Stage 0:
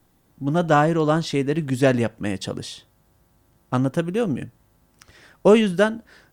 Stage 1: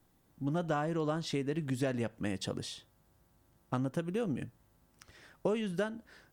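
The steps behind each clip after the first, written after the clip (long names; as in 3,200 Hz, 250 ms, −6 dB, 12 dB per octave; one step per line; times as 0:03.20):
downward compressor 6 to 1, threshold −22 dBFS, peak gain reduction 12.5 dB
level −7.5 dB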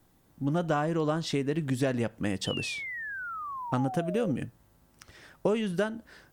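sound drawn into the spectrogram fall, 0:02.46–0:04.32, 510–3,100 Hz −42 dBFS
level +5 dB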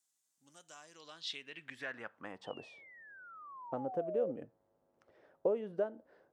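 band-pass filter sweep 7,300 Hz → 540 Hz, 0:00.70–0:02.82
level −1.5 dB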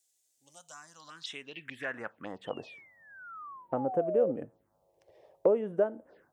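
phaser swept by the level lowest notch 190 Hz, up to 4,500 Hz, full sweep at −40.5 dBFS
level +7.5 dB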